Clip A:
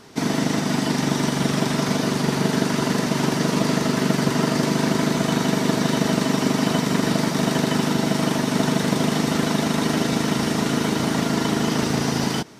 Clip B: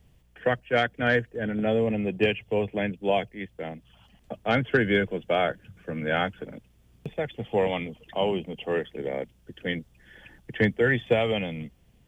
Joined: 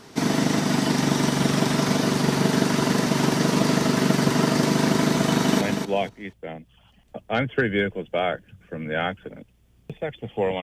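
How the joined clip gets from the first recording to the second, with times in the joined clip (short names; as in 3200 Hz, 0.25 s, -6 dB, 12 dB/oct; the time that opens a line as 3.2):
clip A
5.25–5.61 echo throw 0.24 s, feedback 20%, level -6 dB
5.61 switch to clip B from 2.77 s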